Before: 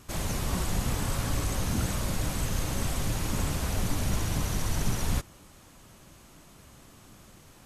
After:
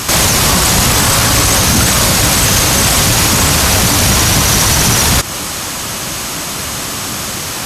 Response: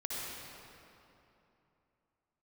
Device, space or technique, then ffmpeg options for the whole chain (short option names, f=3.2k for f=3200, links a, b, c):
mastering chain: -af "highpass=59,equalizer=f=5.1k:t=o:w=0.77:g=3,acompressor=threshold=-34dB:ratio=2,asoftclip=type=tanh:threshold=-24dB,tiltshelf=f=670:g=-4.5,alimiter=level_in=33dB:limit=-1dB:release=50:level=0:latency=1,volume=-1dB"